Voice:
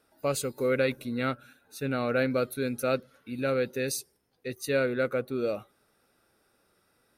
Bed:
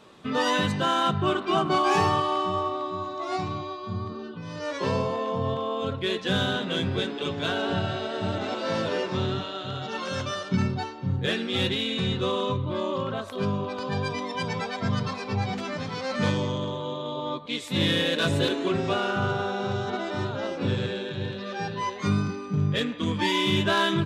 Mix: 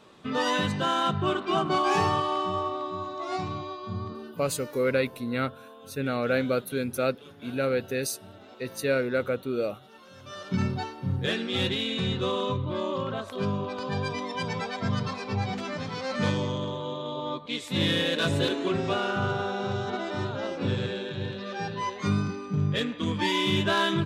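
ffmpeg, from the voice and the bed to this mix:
-filter_complex "[0:a]adelay=4150,volume=1dB[a];[1:a]volume=16dB,afade=t=out:st=4.09:d=0.73:silence=0.133352,afade=t=in:st=10.21:d=0.42:silence=0.125893[b];[a][b]amix=inputs=2:normalize=0"

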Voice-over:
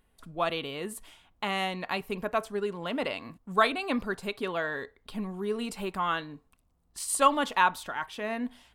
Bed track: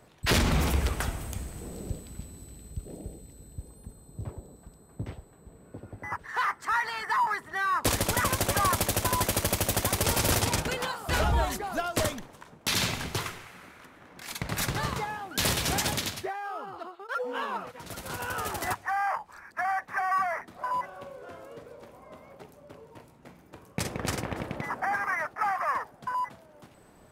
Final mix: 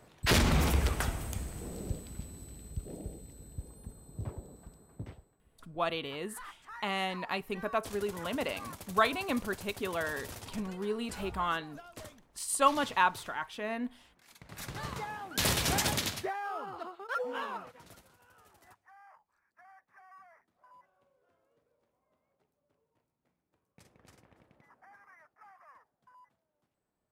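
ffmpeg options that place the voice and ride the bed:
-filter_complex "[0:a]adelay=5400,volume=-3dB[a];[1:a]volume=17dB,afade=t=out:st=4.63:d=0.77:silence=0.11885,afade=t=in:st=14.45:d=1.12:silence=0.11885,afade=t=out:st=17.1:d=1.01:silence=0.0421697[b];[a][b]amix=inputs=2:normalize=0"

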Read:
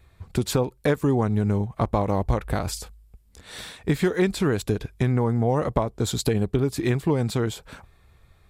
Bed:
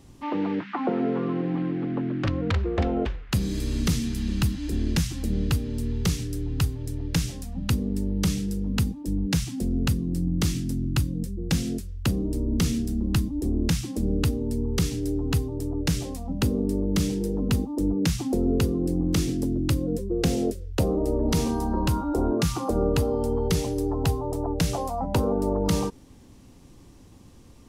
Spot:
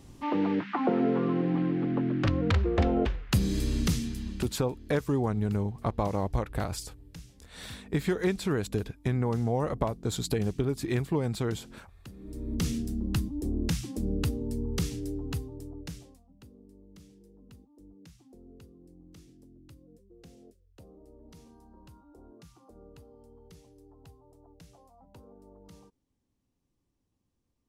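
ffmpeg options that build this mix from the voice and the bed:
-filter_complex "[0:a]adelay=4050,volume=-6dB[a];[1:a]volume=16.5dB,afade=t=out:st=3.6:d=0.98:silence=0.0794328,afade=t=in:st=12.18:d=0.48:silence=0.141254,afade=t=out:st=14.74:d=1.52:silence=0.0630957[b];[a][b]amix=inputs=2:normalize=0"

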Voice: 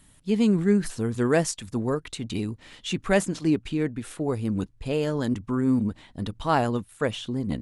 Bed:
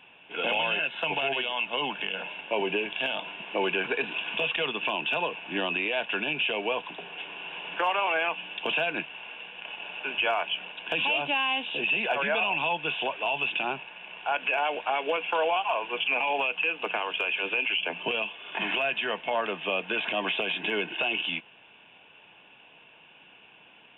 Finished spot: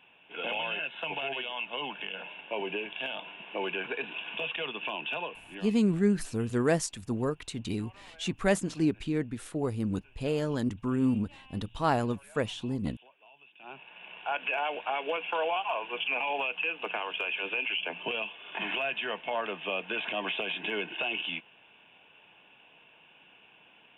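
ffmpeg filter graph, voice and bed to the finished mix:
-filter_complex "[0:a]adelay=5350,volume=-4dB[a];[1:a]volume=19dB,afade=t=out:st=5.15:d=0.67:silence=0.0707946,afade=t=in:st=13.58:d=0.47:silence=0.0562341[b];[a][b]amix=inputs=2:normalize=0"

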